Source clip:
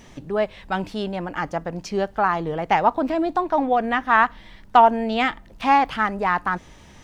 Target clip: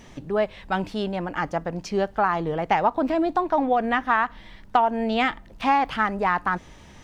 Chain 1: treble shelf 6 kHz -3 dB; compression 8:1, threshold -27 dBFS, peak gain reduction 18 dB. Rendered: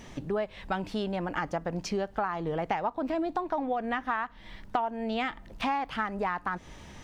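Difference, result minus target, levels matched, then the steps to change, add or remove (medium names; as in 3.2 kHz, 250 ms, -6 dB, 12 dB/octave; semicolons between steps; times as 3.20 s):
compression: peak gain reduction +10 dB
change: compression 8:1, threshold -15.5 dBFS, peak gain reduction 8 dB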